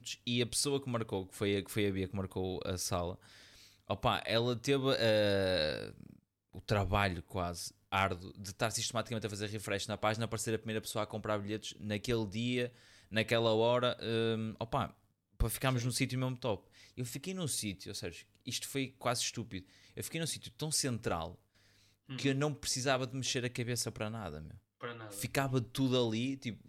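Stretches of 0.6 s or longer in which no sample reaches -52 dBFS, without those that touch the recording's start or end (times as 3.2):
21.35–22.09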